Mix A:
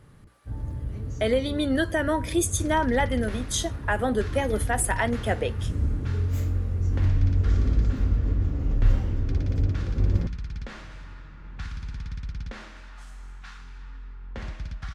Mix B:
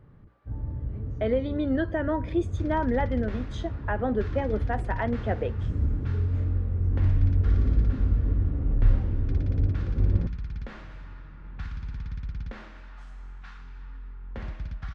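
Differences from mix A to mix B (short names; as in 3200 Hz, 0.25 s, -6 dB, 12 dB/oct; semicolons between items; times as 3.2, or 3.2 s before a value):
second sound: remove tape spacing loss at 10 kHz 22 dB; master: add tape spacing loss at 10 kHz 41 dB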